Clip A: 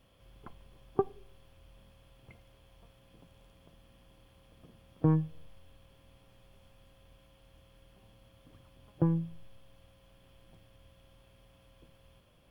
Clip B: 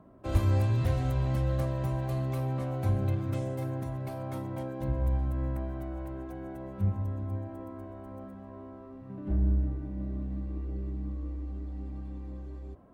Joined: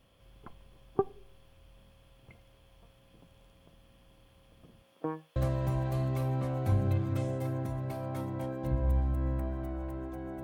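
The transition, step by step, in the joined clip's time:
clip A
4.82–5.36 HPF 240 Hz -> 900 Hz
5.36 switch to clip B from 1.53 s

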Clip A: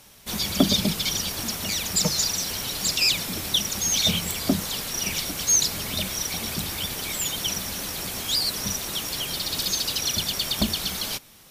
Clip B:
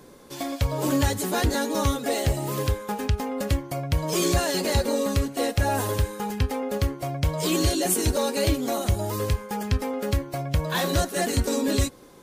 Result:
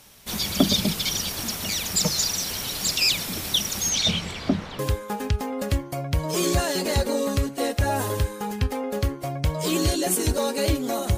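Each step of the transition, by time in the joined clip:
clip A
3.89–4.79 LPF 8300 Hz -> 1700 Hz
4.79 switch to clip B from 2.58 s

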